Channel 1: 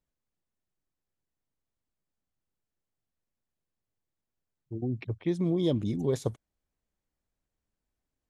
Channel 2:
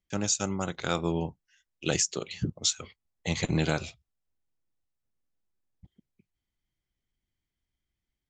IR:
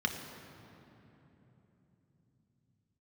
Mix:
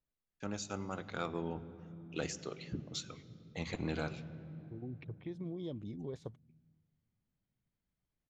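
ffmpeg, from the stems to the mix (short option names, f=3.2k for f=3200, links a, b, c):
-filter_complex "[0:a]acompressor=threshold=-40dB:ratio=2,volume=-6dB[a];[1:a]adelay=300,volume=-8.5dB,asplit=2[b][c];[c]volume=-15.5dB[d];[2:a]atrim=start_sample=2205[e];[d][e]afir=irnorm=-1:irlink=0[f];[a][b][f]amix=inputs=3:normalize=0,lowpass=4.4k,asoftclip=type=tanh:threshold=-22.5dB"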